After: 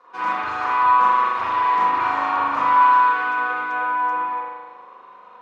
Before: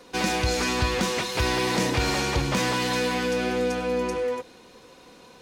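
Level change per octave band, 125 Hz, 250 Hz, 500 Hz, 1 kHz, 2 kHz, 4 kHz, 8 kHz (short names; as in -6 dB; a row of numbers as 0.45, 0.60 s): under -15 dB, -11.0 dB, -10.0 dB, +14.5 dB, +5.0 dB, -11.5 dB, under -20 dB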